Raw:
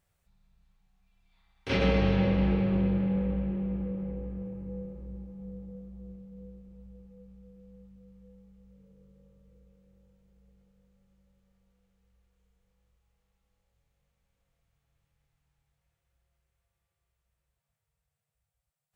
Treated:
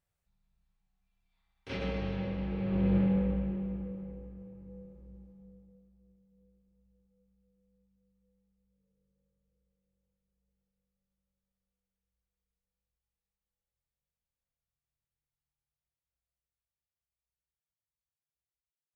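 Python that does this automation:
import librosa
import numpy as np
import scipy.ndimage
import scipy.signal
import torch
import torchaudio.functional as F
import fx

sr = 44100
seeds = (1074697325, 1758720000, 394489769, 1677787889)

y = fx.gain(x, sr, db=fx.line((2.5, -10.0), (2.97, 2.0), (4.37, -10.0), (5.27, -10.0), (5.99, -20.0)))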